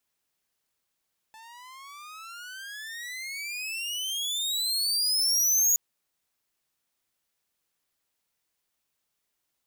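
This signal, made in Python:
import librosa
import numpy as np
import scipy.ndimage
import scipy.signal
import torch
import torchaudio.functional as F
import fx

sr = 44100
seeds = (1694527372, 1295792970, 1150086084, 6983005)

y = fx.riser_tone(sr, length_s=4.42, level_db=-15.0, wave='saw', hz=873.0, rise_st=35.5, swell_db=29.0)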